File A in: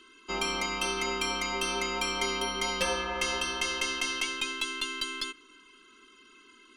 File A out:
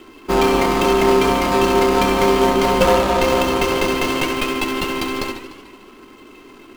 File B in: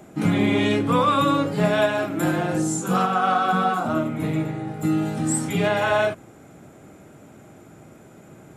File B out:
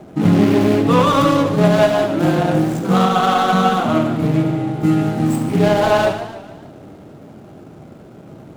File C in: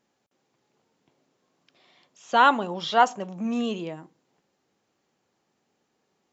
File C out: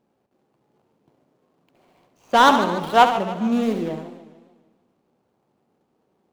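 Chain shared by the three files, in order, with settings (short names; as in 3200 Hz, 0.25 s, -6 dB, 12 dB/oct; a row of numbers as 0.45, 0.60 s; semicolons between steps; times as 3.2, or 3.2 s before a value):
median filter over 25 samples; flutter echo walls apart 11.8 m, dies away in 0.43 s; warbling echo 0.147 s, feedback 51%, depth 178 cents, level -13 dB; normalise peaks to -1.5 dBFS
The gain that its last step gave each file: +19.5, +7.5, +6.5 dB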